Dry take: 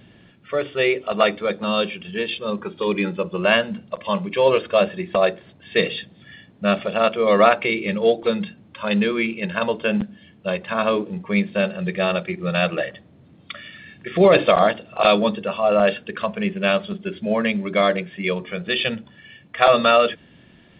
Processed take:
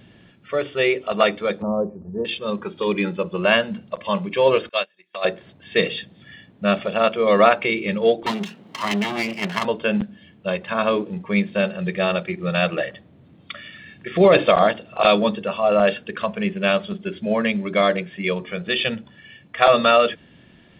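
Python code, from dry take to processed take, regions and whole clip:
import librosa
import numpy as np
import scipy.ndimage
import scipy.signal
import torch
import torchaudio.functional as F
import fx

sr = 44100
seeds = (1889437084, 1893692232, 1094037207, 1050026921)

y = fx.chain(x, sr, fx.steep_lowpass(hz=980.0, slope=36),
    fx.peak_eq(hz=71.0, db=11.5, octaves=0.9), at=(1.62, 2.25))
y = fx.chain(y, sr, fx.highpass(hz=1300.0, slope=6),
    fx.high_shelf(hz=2100.0, db=8.0),
    fx.upward_expand(threshold_db=-36.0, expansion=2.5), at=(4.69, 5.25))
y = fx.chain(y, sr, fx.lower_of_two(delay_ms=0.99),
    fx.highpass(hz=160.0, slope=24),
    fx.band_squash(depth_pct=70), at=(8.26, 9.65))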